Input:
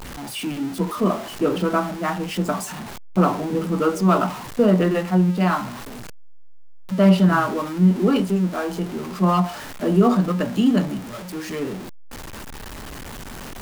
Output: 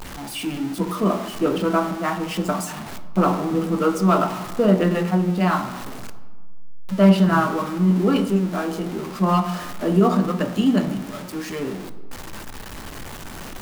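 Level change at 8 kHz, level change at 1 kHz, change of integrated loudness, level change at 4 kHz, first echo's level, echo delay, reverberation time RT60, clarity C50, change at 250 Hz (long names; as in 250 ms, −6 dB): 0.0 dB, +0.5 dB, −0.5 dB, +0.5 dB, no echo audible, no echo audible, 1.4 s, 12.5 dB, −0.5 dB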